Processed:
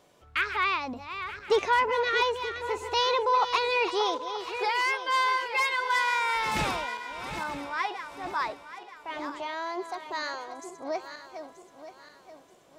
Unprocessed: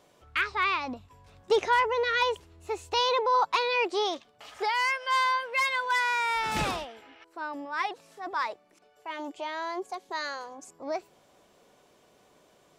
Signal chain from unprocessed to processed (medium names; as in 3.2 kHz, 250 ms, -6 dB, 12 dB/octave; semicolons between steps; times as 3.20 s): backward echo that repeats 465 ms, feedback 59%, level -9.5 dB